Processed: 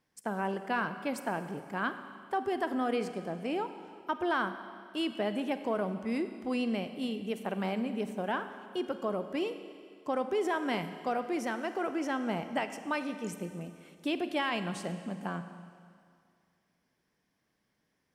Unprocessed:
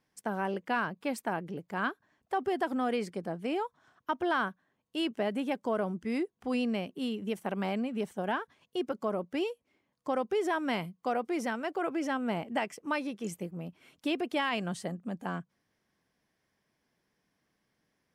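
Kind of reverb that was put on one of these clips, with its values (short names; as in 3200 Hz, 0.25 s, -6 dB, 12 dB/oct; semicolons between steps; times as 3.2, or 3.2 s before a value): Schroeder reverb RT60 2.2 s, combs from 31 ms, DRR 9.5 dB; gain -1 dB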